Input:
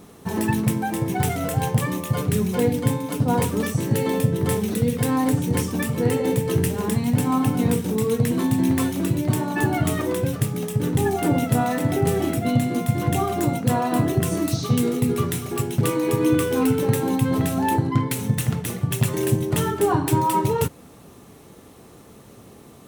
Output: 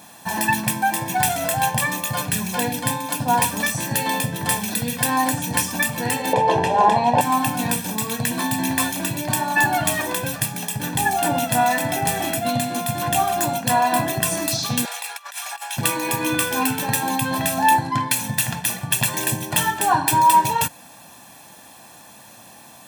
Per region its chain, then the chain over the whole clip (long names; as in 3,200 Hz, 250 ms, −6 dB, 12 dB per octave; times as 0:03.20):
0:06.33–0:07.21: low-pass filter 3,800 Hz + flat-topped bell 610 Hz +15 dB
0:14.85–0:15.77: inverse Chebyshev high-pass filter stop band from 280 Hz, stop band 50 dB + high-shelf EQ 10,000 Hz −9.5 dB + compressor whose output falls as the input rises −38 dBFS, ratio −0.5
whole clip: high-pass filter 1,000 Hz 6 dB per octave; comb filter 1.2 ms, depth 80%; level +7 dB